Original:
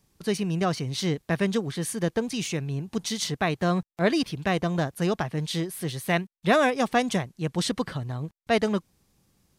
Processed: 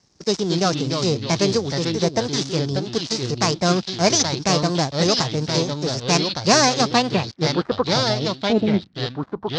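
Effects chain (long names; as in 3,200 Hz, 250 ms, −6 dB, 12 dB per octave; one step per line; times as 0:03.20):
gap after every zero crossing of 0.14 ms
high-pass filter 62 Hz
high shelf with overshoot 3,300 Hz +10.5 dB, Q 1.5
formants moved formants +4 semitones
low-pass filter sweep 5,500 Hz → 240 Hz, 0:06.79–0:08.80
delay with pitch and tempo change per echo 178 ms, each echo −3 semitones, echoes 2, each echo −6 dB
high-frequency loss of the air 110 metres
level +5 dB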